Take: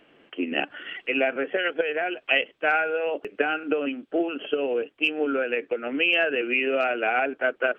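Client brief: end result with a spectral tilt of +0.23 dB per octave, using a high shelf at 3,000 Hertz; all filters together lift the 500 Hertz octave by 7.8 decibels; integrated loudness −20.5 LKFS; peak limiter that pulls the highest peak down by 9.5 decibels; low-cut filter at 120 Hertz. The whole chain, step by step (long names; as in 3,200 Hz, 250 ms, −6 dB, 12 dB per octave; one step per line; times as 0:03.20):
high-pass filter 120 Hz
parametric band 500 Hz +9 dB
high-shelf EQ 3,000 Hz +4 dB
level +2 dB
brickwall limiter −10 dBFS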